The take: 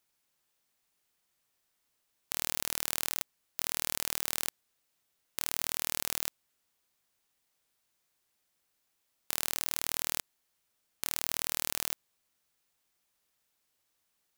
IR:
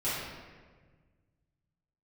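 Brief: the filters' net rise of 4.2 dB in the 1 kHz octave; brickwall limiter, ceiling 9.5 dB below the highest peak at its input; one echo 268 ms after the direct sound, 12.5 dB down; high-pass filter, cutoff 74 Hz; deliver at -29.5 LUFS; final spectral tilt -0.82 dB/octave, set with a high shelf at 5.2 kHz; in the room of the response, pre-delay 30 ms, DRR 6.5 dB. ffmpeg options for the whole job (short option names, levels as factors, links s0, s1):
-filter_complex "[0:a]highpass=74,equalizer=f=1000:t=o:g=5.5,highshelf=f=5200:g=-4,alimiter=limit=0.15:level=0:latency=1,aecho=1:1:268:0.237,asplit=2[s0][s1];[1:a]atrim=start_sample=2205,adelay=30[s2];[s1][s2]afir=irnorm=-1:irlink=0,volume=0.178[s3];[s0][s3]amix=inputs=2:normalize=0,volume=5.62"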